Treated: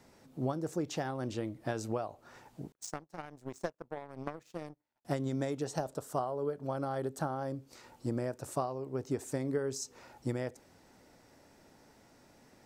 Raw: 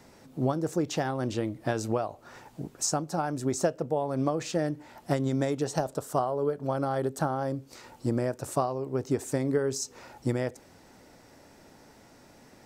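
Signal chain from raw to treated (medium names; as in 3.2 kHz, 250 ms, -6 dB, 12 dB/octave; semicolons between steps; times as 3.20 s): 2.72–5.05 s: power-law waveshaper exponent 2; trim -6.5 dB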